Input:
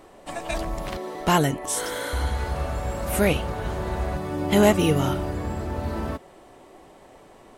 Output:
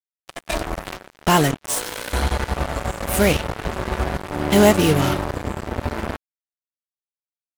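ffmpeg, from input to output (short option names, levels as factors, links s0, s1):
-af "acrusher=bits=3:mix=0:aa=0.5,volume=1.5"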